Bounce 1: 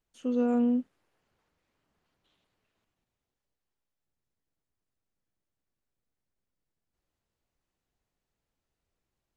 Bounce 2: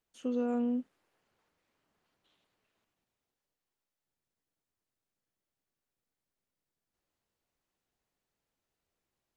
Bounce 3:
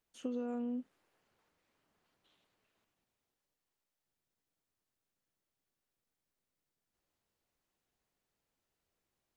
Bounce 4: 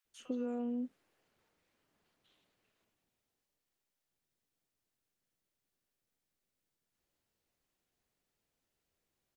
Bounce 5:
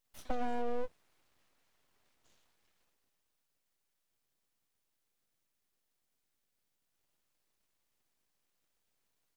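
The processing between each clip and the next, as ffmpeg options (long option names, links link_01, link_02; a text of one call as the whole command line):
ffmpeg -i in.wav -af "acompressor=threshold=-28dB:ratio=2.5,lowshelf=frequency=130:gain=-9.5" out.wav
ffmpeg -i in.wav -af "acompressor=threshold=-35dB:ratio=6" out.wav
ffmpeg -i in.wav -filter_complex "[0:a]acrossover=split=990[link_01][link_02];[link_01]adelay=50[link_03];[link_03][link_02]amix=inputs=2:normalize=0,volume=1dB" out.wav
ffmpeg -i in.wav -af "aeval=exprs='abs(val(0))':channel_layout=same,volume=5.5dB" out.wav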